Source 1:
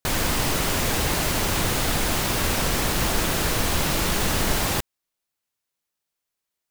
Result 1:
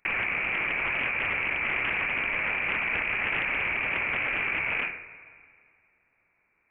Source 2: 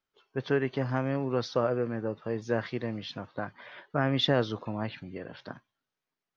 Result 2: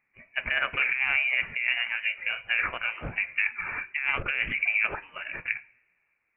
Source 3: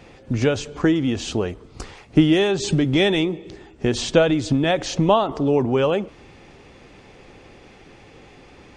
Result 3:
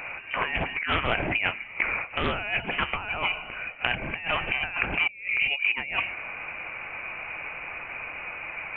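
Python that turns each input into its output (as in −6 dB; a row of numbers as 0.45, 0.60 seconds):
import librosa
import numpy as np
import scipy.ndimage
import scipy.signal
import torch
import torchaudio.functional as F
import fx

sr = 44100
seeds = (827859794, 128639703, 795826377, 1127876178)

y = fx.ladder_highpass(x, sr, hz=870.0, resonance_pct=70)
y = fx.rev_double_slope(y, sr, seeds[0], early_s=0.49, late_s=2.1, knee_db=-20, drr_db=17.0)
y = fx.over_compress(y, sr, threshold_db=-44.0, ratio=-1.0)
y = fx.freq_invert(y, sr, carrier_hz=3300)
y = fx.doppler_dist(y, sr, depth_ms=0.27)
y = y * 10.0 ** (-30 / 20.0) / np.sqrt(np.mean(np.square(y)))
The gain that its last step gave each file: +16.5, +18.5, +15.0 decibels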